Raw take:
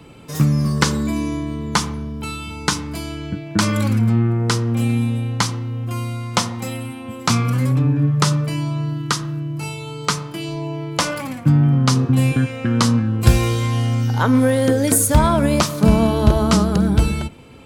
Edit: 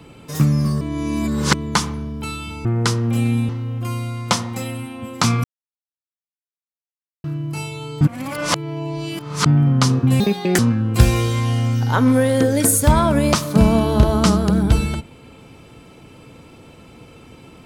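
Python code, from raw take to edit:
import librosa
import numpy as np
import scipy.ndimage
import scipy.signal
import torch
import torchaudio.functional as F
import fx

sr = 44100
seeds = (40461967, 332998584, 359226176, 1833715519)

y = fx.edit(x, sr, fx.reverse_span(start_s=0.81, length_s=0.73),
    fx.cut(start_s=2.65, length_s=1.64),
    fx.cut(start_s=5.13, length_s=0.42),
    fx.silence(start_s=7.5, length_s=1.8),
    fx.reverse_span(start_s=10.07, length_s=1.45),
    fx.speed_span(start_s=12.26, length_s=0.6, speed=1.55), tone=tone)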